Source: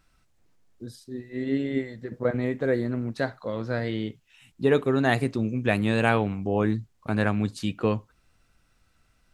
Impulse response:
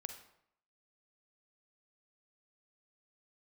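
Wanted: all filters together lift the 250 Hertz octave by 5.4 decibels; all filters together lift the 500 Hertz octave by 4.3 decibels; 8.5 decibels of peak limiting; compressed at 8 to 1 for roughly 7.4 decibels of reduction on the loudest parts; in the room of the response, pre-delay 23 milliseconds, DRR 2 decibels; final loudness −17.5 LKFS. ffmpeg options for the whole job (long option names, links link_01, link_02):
-filter_complex "[0:a]equalizer=frequency=250:width_type=o:gain=5.5,equalizer=frequency=500:width_type=o:gain=3.5,acompressor=threshold=-19dB:ratio=8,alimiter=limit=-18.5dB:level=0:latency=1,asplit=2[link_01][link_02];[1:a]atrim=start_sample=2205,adelay=23[link_03];[link_02][link_03]afir=irnorm=-1:irlink=0,volume=1dB[link_04];[link_01][link_04]amix=inputs=2:normalize=0,volume=10dB"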